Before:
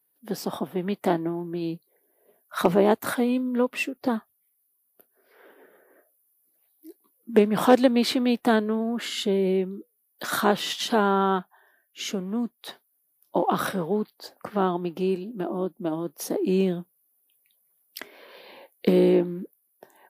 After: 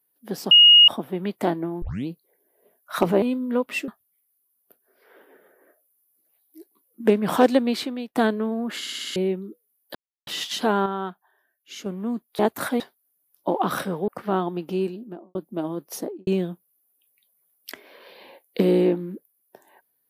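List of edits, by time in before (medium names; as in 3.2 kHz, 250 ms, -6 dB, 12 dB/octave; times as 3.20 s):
0.51 s: add tone 2.87 kHz -8 dBFS 0.37 s
1.45 s: tape start 0.25 s
2.85–3.26 s: move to 12.68 s
3.92–4.17 s: delete
7.85–8.44 s: fade out, to -18 dB
9.09 s: stutter in place 0.06 s, 6 plays
10.24–10.56 s: mute
11.15–12.15 s: gain -6.5 dB
13.96–14.36 s: delete
15.16–15.63 s: studio fade out
16.21–16.55 s: studio fade out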